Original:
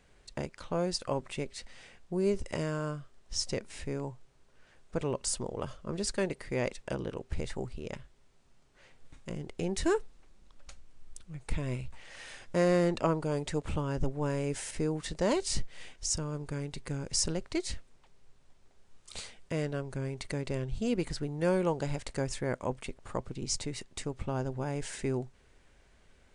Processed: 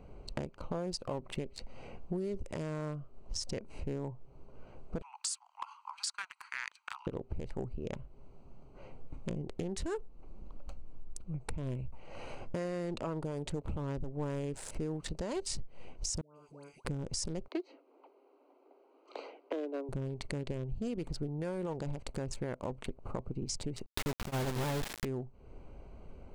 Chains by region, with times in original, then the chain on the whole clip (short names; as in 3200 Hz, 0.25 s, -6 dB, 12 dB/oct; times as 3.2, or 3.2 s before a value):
5.02–7.07 steep high-pass 1100 Hz 96 dB/oct + frequency shift -200 Hz
16.21–16.85 differentiator + dispersion highs, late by 0.146 s, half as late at 990 Hz
17.48–19.89 steep high-pass 270 Hz 96 dB/oct + air absorption 210 m
23.86–25.05 CVSD 32 kbps + high shelf 4300 Hz -9 dB + companded quantiser 2-bit
whole clip: Wiener smoothing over 25 samples; limiter -25.5 dBFS; compressor 4:1, threshold -50 dBFS; gain +13 dB